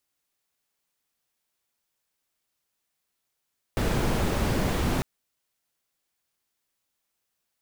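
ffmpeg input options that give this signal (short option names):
-f lavfi -i "anoisesrc=c=brown:a=0.279:d=1.25:r=44100:seed=1"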